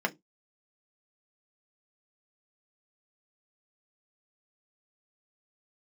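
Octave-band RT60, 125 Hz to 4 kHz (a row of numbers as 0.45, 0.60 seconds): 0.25, 0.25, 0.20, 0.15, 0.15, 0.15 seconds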